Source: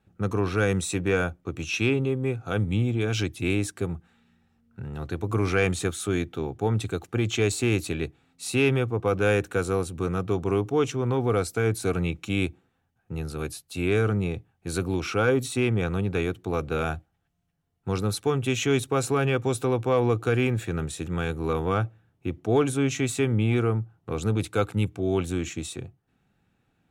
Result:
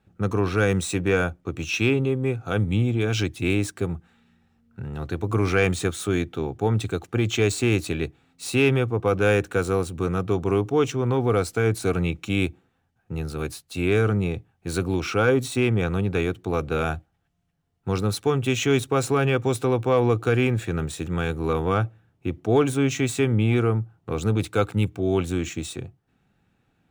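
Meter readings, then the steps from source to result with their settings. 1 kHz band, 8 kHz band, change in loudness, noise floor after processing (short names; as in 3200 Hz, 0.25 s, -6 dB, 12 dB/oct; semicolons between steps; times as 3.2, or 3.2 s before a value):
+2.5 dB, +0.5 dB, +2.5 dB, -70 dBFS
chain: median filter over 3 samples; gain +2.5 dB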